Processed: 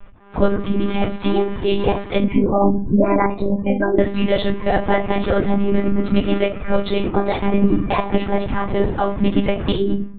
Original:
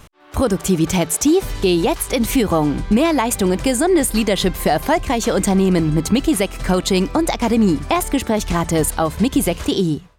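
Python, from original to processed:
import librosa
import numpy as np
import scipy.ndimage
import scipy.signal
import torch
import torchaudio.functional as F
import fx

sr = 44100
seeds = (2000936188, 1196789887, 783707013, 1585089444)

y = fx.wiener(x, sr, points=9)
y = fx.spec_gate(y, sr, threshold_db=-20, keep='strong', at=(2.2, 3.98), fade=0.02)
y = fx.room_shoebox(y, sr, seeds[0], volume_m3=130.0, walls='furnished', distance_m=2.2)
y = fx.lpc_monotone(y, sr, seeds[1], pitch_hz=200.0, order=16)
y = F.gain(torch.from_numpy(y), -5.0).numpy()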